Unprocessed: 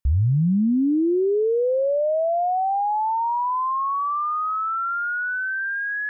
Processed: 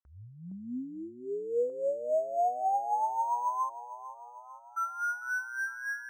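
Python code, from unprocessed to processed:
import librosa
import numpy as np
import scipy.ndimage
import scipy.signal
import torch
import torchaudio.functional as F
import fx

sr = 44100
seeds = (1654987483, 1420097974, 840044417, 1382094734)

y = fx.comb(x, sr, ms=4.2, depth=0.69, at=(0.51, 1.7))
y = fx.cheby2_bandstop(y, sr, low_hz=100.0, high_hz=930.0, order=4, stop_db=60, at=(3.68, 4.76), fade=0.02)
y = fx.filter_lfo_bandpass(y, sr, shape='sine', hz=3.6, low_hz=660.0, high_hz=1500.0, q=2.7)
y = fx.echo_feedback(y, sr, ms=449, feedback_pct=57, wet_db=-14.5)
y = np.interp(np.arange(len(y)), np.arange(len(y))[::6], y[::6])
y = y * librosa.db_to_amplitude(-3.5)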